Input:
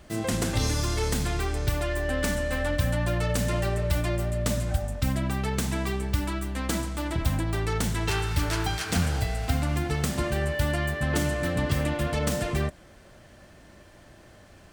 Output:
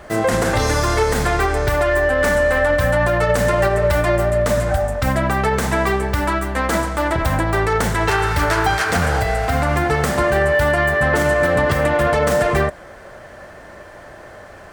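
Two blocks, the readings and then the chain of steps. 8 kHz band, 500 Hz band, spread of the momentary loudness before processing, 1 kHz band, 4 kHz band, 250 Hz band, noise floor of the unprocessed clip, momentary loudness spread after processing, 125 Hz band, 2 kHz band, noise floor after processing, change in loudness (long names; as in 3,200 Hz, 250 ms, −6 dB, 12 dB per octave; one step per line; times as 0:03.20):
+5.0 dB, +14.5 dB, 3 LU, +15.0 dB, +5.5 dB, +6.5 dB, −52 dBFS, 4 LU, +5.5 dB, +14.0 dB, −40 dBFS, +10.0 dB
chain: flat-topped bell 910 Hz +10 dB 2.6 octaves
boost into a limiter +13 dB
level −6.5 dB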